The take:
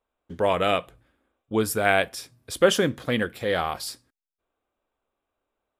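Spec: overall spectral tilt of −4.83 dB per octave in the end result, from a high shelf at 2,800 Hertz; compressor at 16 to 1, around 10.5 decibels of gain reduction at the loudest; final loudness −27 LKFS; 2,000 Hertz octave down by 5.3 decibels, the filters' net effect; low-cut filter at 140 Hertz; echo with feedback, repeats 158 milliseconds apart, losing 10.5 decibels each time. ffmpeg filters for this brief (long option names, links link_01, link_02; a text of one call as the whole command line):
ffmpeg -i in.wav -af "highpass=140,equalizer=frequency=2000:width_type=o:gain=-4,highshelf=frequency=2800:gain=-8.5,acompressor=threshold=-23dB:ratio=16,aecho=1:1:158|316|474:0.299|0.0896|0.0269,volume=3.5dB" out.wav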